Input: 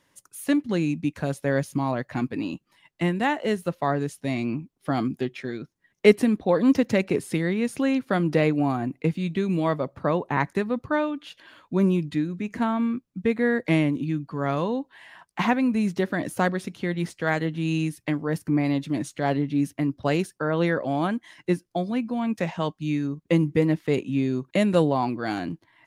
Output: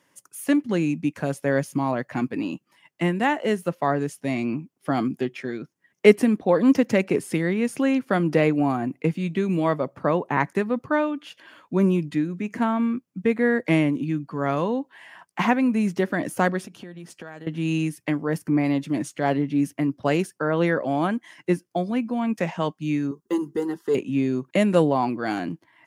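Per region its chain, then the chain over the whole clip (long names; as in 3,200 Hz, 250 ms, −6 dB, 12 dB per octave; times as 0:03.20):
0:16.63–0:17.47: notch filter 2,100 Hz, Q 6.9 + downward compressor 12 to 1, threshold −36 dBFS
0:23.11–0:23.95: de-essing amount 85% + phaser with its sweep stopped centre 620 Hz, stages 6 + comb filter 5 ms, depth 64%
whole clip: high-pass filter 140 Hz; parametric band 3,900 Hz −7 dB 0.32 octaves; level +2 dB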